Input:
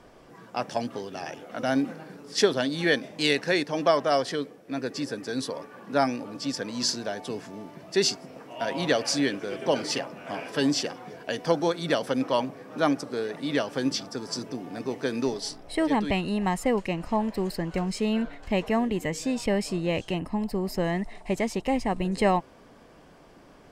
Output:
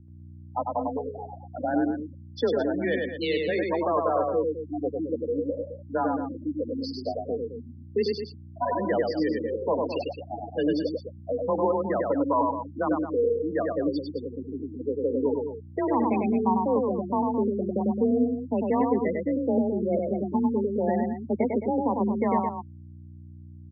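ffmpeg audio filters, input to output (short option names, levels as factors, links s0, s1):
-filter_complex "[0:a]afwtdn=0.0224,afftfilt=real='re*gte(hypot(re,im),0.1)':imag='im*gte(hypot(re,im),0.1)':win_size=1024:overlap=0.75,lowshelf=f=240:g=-3,acrossover=split=180[s0][s1];[s1]alimiter=limit=0.0841:level=0:latency=1:release=12[s2];[s0][s2]amix=inputs=2:normalize=0,highpass=f=110:w=0.5412,highpass=f=110:w=1.3066,equalizer=f=130:t=q:w=4:g=-5,equalizer=f=200:t=q:w=4:g=5,equalizer=f=450:t=q:w=4:g=7,equalizer=f=960:t=q:w=4:g=10,lowpass=f=3900:w=0.5412,lowpass=f=3900:w=1.3066,aeval=exprs='val(0)+0.00355*(sin(2*PI*60*n/s)+sin(2*PI*2*60*n/s)/2+sin(2*PI*3*60*n/s)/3+sin(2*PI*4*60*n/s)/4+sin(2*PI*5*60*n/s)/5)':c=same,aecho=1:1:99.13|215.7:0.708|0.316,afreqshift=26"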